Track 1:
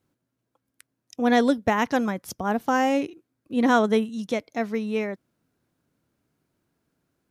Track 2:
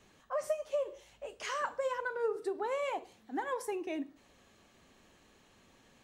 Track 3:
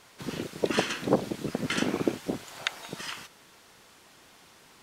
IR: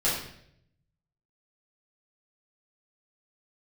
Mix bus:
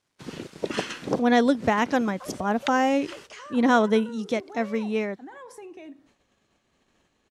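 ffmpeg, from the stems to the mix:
-filter_complex "[0:a]volume=0dB,asplit=2[a][b];[1:a]alimiter=level_in=7.5dB:limit=-24dB:level=0:latency=1,volume=-7.5dB,acompressor=threshold=-42dB:ratio=4,adelay=1900,volume=1.5dB[c];[2:a]aeval=exprs='sgn(val(0))*max(abs(val(0))-0.00188,0)':c=same,volume=-2dB[d];[b]apad=whole_len=212881[e];[d][e]sidechaincompress=threshold=-34dB:ratio=8:attack=8.8:release=105[f];[a][c][f]amix=inputs=3:normalize=0,agate=range=-9dB:threshold=-60dB:ratio=16:detection=peak,lowpass=9.6k"

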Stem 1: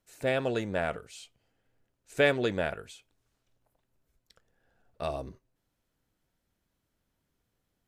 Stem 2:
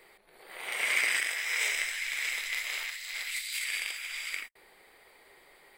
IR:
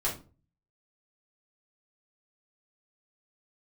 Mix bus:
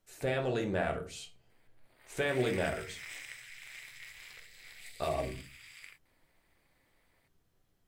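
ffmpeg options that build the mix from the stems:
-filter_complex "[0:a]alimiter=limit=-24dB:level=0:latency=1:release=132,volume=-2.5dB,asplit=2[a][b];[b]volume=-6dB[c];[1:a]aeval=exprs='val(0)*sin(2*PI*130*n/s)':c=same,adelay=1500,volume=-13dB[d];[2:a]atrim=start_sample=2205[e];[c][e]afir=irnorm=-1:irlink=0[f];[a][d][f]amix=inputs=3:normalize=0"

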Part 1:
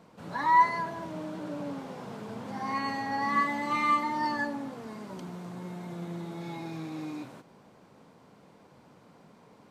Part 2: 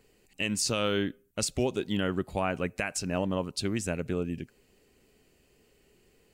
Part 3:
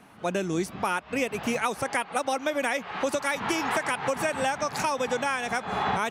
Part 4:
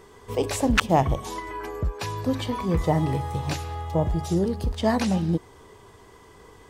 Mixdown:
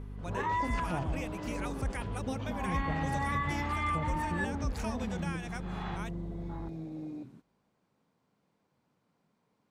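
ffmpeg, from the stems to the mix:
-filter_complex "[0:a]afwtdn=0.0126,volume=-0.5dB[a];[1:a]volume=-16.5dB,asplit=2[b][c];[c]volume=-10.5dB[d];[2:a]volume=-12.5dB[e];[3:a]aemphasis=mode=reproduction:type=bsi,aeval=exprs='val(0)+0.0316*(sin(2*PI*50*n/s)+sin(2*PI*2*50*n/s)/2+sin(2*PI*3*50*n/s)/3+sin(2*PI*4*50*n/s)/4+sin(2*PI*5*50*n/s)/5)':c=same,volume=-9dB,asplit=2[f][g];[g]volume=-20.5dB[h];[a][e]amix=inputs=2:normalize=0,equalizer=f=550:t=o:w=2.1:g=-4,alimiter=level_in=1dB:limit=-24dB:level=0:latency=1:release=191,volume=-1dB,volume=0dB[i];[b][f]amix=inputs=2:normalize=0,lowpass=4k,acompressor=threshold=-41dB:ratio=2,volume=0dB[j];[d][h]amix=inputs=2:normalize=0,aecho=0:1:119|238|357|476|595|714|833|952|1071:1|0.57|0.325|0.185|0.106|0.0602|0.0343|0.0195|0.0111[k];[i][j][k]amix=inputs=3:normalize=0"

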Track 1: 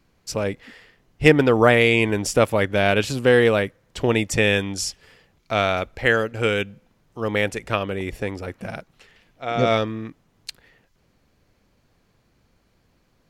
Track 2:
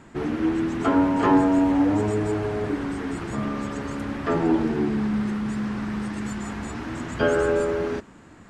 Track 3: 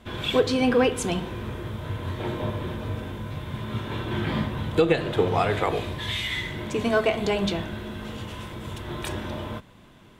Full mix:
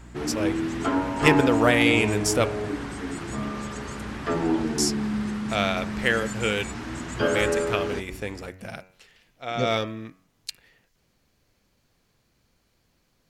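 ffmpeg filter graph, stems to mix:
-filter_complex "[0:a]volume=-5.5dB,asplit=3[a][b][c];[a]atrim=end=2.45,asetpts=PTS-STARTPTS,afade=t=out:st=2.446:d=0.004:c=hsin[d];[b]atrim=start=2.45:end=4.78,asetpts=PTS-STARTPTS,volume=0[e];[c]atrim=start=4.78,asetpts=PTS-STARTPTS,afade=t=in:d=0.004:c=hsin[f];[d][e][f]concat=n=3:v=0:a=1[g];[1:a]aeval=exprs='val(0)+0.00891*(sin(2*PI*60*n/s)+sin(2*PI*2*60*n/s)/2+sin(2*PI*3*60*n/s)/3+sin(2*PI*4*60*n/s)/4+sin(2*PI*5*60*n/s)/5)':c=same,volume=-3dB[h];[g][h]amix=inputs=2:normalize=0,highshelf=f=2.9k:g=8,bandreject=f=93.4:t=h:w=4,bandreject=f=186.8:t=h:w=4,bandreject=f=280.2:t=h:w=4,bandreject=f=373.6:t=h:w=4,bandreject=f=467:t=h:w=4,bandreject=f=560.4:t=h:w=4,bandreject=f=653.8:t=h:w=4,bandreject=f=747.2:t=h:w=4,bandreject=f=840.6:t=h:w=4,bandreject=f=934:t=h:w=4,bandreject=f=1.0274k:t=h:w=4,bandreject=f=1.1208k:t=h:w=4,bandreject=f=1.2142k:t=h:w=4,bandreject=f=1.3076k:t=h:w=4,bandreject=f=1.401k:t=h:w=4,bandreject=f=1.4944k:t=h:w=4,bandreject=f=1.5878k:t=h:w=4,bandreject=f=1.6812k:t=h:w=4,bandreject=f=1.7746k:t=h:w=4,bandreject=f=1.868k:t=h:w=4,bandreject=f=1.9614k:t=h:w=4,bandreject=f=2.0548k:t=h:w=4,bandreject=f=2.1482k:t=h:w=4,bandreject=f=2.2416k:t=h:w=4,bandreject=f=2.335k:t=h:w=4,bandreject=f=2.4284k:t=h:w=4,bandreject=f=2.5218k:t=h:w=4,bandreject=f=2.6152k:t=h:w=4,bandreject=f=2.7086k:t=h:w=4,bandreject=f=2.802k:t=h:w=4"

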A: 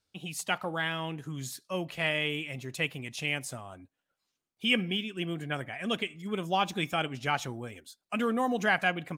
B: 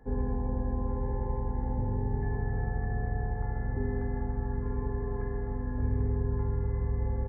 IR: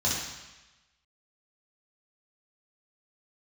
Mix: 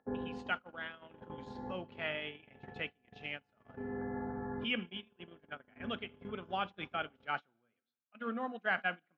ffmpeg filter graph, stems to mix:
-filter_complex "[0:a]volume=-10dB,asplit=3[a][b][c];[b]volume=-24dB[d];[1:a]acompressor=mode=upward:threshold=-35dB:ratio=2.5,volume=-2dB[e];[c]apad=whole_len=321159[f];[e][f]sidechaincompress=threshold=-50dB:ratio=4:attack=12:release=647[g];[2:a]atrim=start_sample=2205[h];[d][h]afir=irnorm=-1:irlink=0[i];[a][g][i]amix=inputs=3:normalize=0,agate=range=-28dB:threshold=-38dB:ratio=16:detection=peak,highpass=200,equalizer=f=220:t=q:w=4:g=4,equalizer=f=620:t=q:w=4:g=5,equalizer=f=1.4k:t=q:w=4:g=9,lowpass=f=3.9k:w=0.5412,lowpass=f=3.9k:w=1.3066"

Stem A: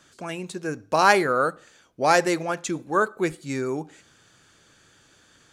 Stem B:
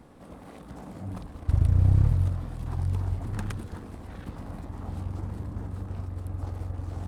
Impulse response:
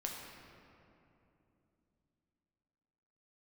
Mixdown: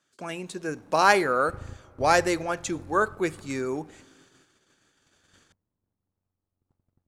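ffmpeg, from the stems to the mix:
-filter_complex "[0:a]volume=-2dB,asplit=3[a][b][c];[b]volume=-23dB[d];[1:a]aeval=exprs='if(lt(val(0),0),0.251*val(0),val(0))':c=same,volume=-10dB,asplit=2[e][f];[f]volume=-17.5dB[g];[c]apad=whole_len=312125[h];[e][h]sidechaingate=range=-33dB:threshold=-53dB:ratio=16:detection=peak[i];[2:a]atrim=start_sample=2205[j];[d][j]afir=irnorm=-1:irlink=0[k];[g]aecho=0:1:267|534|801|1068|1335:1|0.34|0.116|0.0393|0.0134[l];[a][i][k][l]amix=inputs=4:normalize=0,agate=range=-15dB:threshold=-56dB:ratio=16:detection=peak,lowshelf=f=82:g=-11.5"

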